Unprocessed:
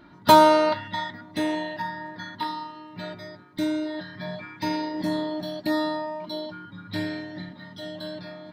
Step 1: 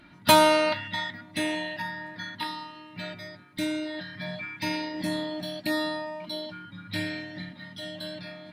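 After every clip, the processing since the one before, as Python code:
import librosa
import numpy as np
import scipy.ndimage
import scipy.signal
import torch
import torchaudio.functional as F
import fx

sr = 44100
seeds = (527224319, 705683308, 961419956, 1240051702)

y = fx.graphic_eq_15(x, sr, hz=(400, 1000, 2500, 10000), db=(-7, -5, 9, 10))
y = y * librosa.db_to_amplitude(-1.0)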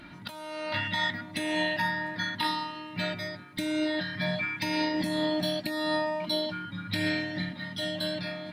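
y = fx.over_compress(x, sr, threshold_db=-32.0, ratio=-1.0)
y = y * librosa.db_to_amplitude(2.0)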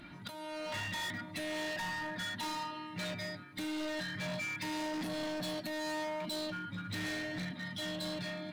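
y = fx.spec_quant(x, sr, step_db=15)
y = np.clip(y, -10.0 ** (-33.0 / 20.0), 10.0 ** (-33.0 / 20.0))
y = y * librosa.db_to_amplitude(-3.0)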